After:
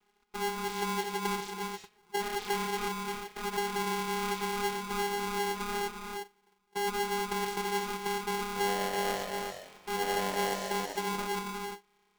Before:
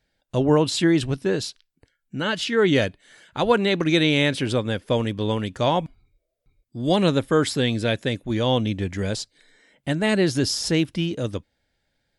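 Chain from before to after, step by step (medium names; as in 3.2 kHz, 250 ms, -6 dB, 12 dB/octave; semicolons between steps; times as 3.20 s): band-stop 1 kHz; compressor with a negative ratio -24 dBFS, ratio -0.5; peak limiter -29 dBFS, peak gain reduction 18 dB; feedback comb 290 Hz, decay 0.18 s, mix 40%; vocoder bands 8, saw 209 Hz; 8.47–10.93 s: frequency-shifting echo 83 ms, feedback 57%, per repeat -94 Hz, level -10 dB; gated-style reverb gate 380 ms rising, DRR 2 dB; polarity switched at an audio rate 610 Hz; trim +7 dB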